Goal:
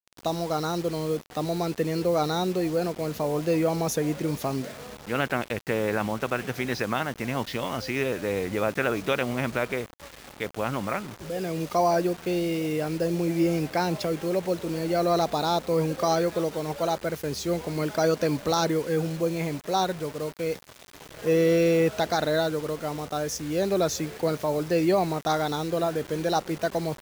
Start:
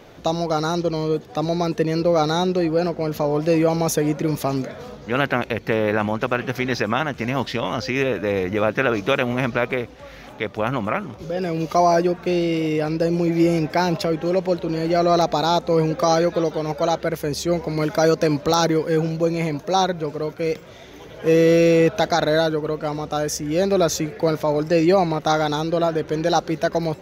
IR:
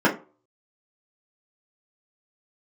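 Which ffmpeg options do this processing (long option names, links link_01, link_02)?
-af "acrusher=bits=5:mix=0:aa=0.000001,volume=-6dB"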